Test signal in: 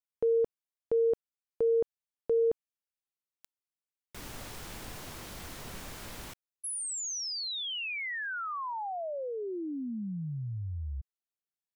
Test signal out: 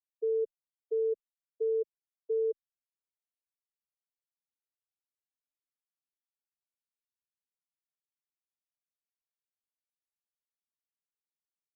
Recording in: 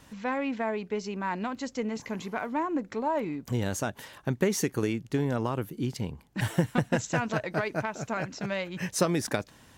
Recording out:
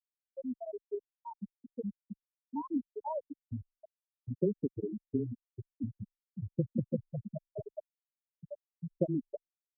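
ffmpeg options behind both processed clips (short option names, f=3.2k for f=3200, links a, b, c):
-filter_complex "[0:a]afftfilt=real='re*gte(hypot(re,im),0.316)':imag='im*gte(hypot(re,im),0.316)':win_size=1024:overlap=0.75,afreqshift=-13,tiltshelf=f=970:g=7,acrossover=split=170|6000[a][b][c];[a]acompressor=threshold=-36dB:ratio=6:attack=25:release=360:knee=1:detection=peak[d];[d][b][c]amix=inputs=3:normalize=0,volume=-7.5dB"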